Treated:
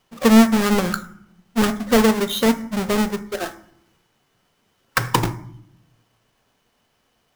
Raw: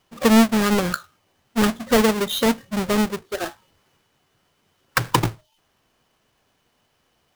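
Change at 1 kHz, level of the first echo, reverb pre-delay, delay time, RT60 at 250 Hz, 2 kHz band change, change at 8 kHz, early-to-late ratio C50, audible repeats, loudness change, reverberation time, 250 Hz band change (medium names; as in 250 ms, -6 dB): +0.5 dB, no echo, 4 ms, no echo, 1.1 s, +0.5 dB, +0.5 dB, 14.5 dB, no echo, +1.5 dB, 0.70 s, +2.5 dB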